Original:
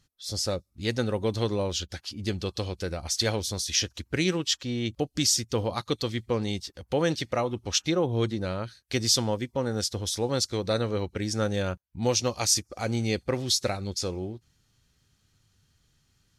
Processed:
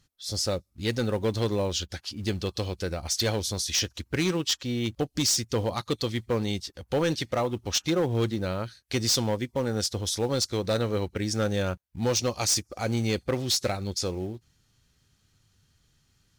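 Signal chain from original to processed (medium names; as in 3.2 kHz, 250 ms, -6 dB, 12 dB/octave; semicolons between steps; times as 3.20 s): in parallel at -7.5 dB: short-mantissa float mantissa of 2-bit; on the sum: overload inside the chain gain 17.5 dB; trim -2 dB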